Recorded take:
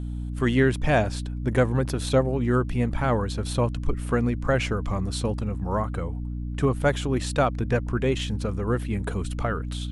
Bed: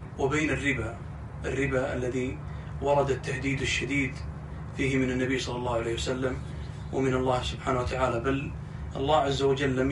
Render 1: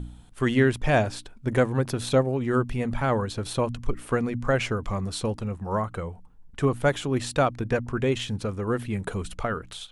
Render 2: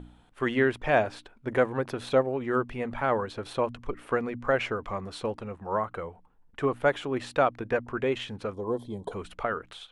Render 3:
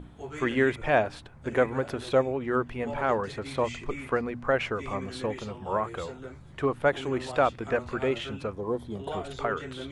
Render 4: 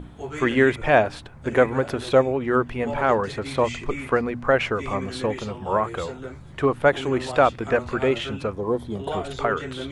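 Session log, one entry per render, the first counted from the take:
hum removal 60 Hz, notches 5
0:08.54–0:09.12: gain on a spectral selection 1,100–3,100 Hz −23 dB; bass and treble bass −12 dB, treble −14 dB
mix in bed −13 dB
level +6 dB

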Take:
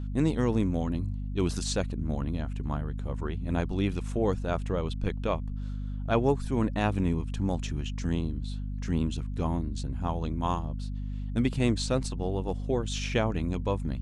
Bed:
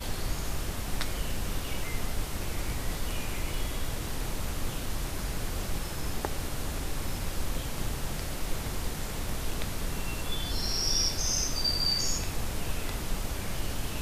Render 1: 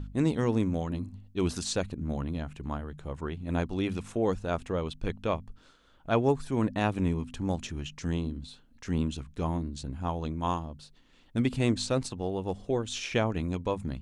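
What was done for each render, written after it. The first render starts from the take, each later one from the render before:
hum removal 50 Hz, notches 5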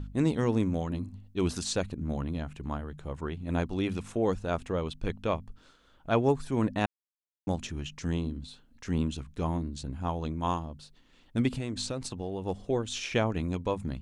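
0:06.86–0:07.47: silence
0:11.57–0:12.45: downward compressor, threshold −29 dBFS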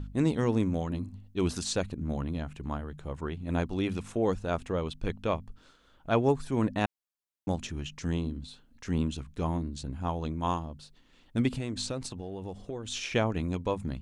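0:12.05–0:12.86: downward compressor, threshold −33 dBFS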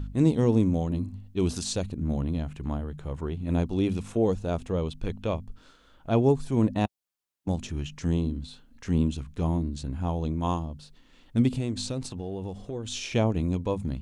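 harmonic and percussive parts rebalanced harmonic +6 dB
dynamic equaliser 1,600 Hz, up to −8 dB, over −46 dBFS, Q 1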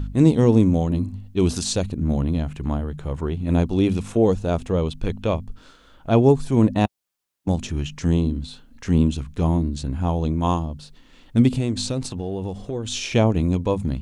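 level +6.5 dB

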